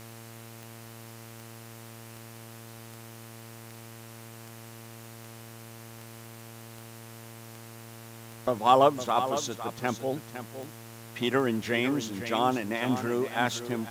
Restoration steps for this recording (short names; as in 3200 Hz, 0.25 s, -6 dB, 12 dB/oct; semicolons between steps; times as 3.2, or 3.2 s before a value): de-click; de-hum 114.1 Hz, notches 27; denoiser 29 dB, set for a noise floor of -46 dBFS; inverse comb 0.508 s -10.5 dB